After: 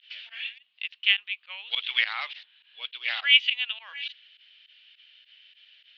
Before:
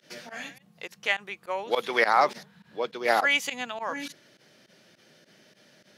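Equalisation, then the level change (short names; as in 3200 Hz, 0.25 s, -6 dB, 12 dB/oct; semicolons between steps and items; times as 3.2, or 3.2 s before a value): resonant high-pass 2900 Hz, resonance Q 4.4; steep low-pass 3800 Hz 36 dB/oct; 0.0 dB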